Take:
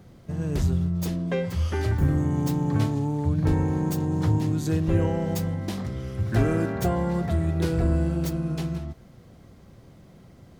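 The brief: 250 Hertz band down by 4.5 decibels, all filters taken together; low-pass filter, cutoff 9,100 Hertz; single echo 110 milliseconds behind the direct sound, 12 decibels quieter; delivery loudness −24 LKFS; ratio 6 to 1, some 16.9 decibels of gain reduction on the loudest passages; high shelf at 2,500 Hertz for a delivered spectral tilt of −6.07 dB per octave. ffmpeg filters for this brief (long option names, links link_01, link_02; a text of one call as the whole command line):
ffmpeg -i in.wav -af "lowpass=9100,equalizer=frequency=250:width_type=o:gain=-8,highshelf=frequency=2500:gain=6,acompressor=threshold=-37dB:ratio=6,aecho=1:1:110:0.251,volume=15.5dB" out.wav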